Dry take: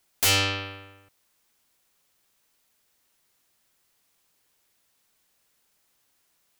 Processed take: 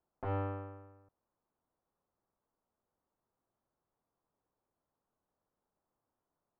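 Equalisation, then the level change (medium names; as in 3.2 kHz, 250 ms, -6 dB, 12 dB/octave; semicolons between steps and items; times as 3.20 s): low-pass 1.1 kHz 24 dB/octave; -6.0 dB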